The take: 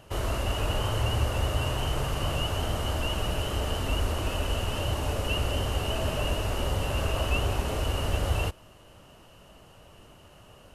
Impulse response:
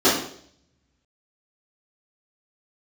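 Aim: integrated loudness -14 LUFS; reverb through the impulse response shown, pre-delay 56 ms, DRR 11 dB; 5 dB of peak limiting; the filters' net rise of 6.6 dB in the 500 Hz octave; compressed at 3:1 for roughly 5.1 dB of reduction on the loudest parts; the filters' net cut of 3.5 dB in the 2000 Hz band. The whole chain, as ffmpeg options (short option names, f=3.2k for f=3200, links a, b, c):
-filter_complex "[0:a]equalizer=f=500:t=o:g=8.5,equalizer=f=2k:t=o:g=-6,acompressor=threshold=-28dB:ratio=3,alimiter=limit=-23dB:level=0:latency=1,asplit=2[a][b];[1:a]atrim=start_sample=2205,adelay=56[c];[b][c]afir=irnorm=-1:irlink=0,volume=-32.5dB[d];[a][d]amix=inputs=2:normalize=0,volume=19dB"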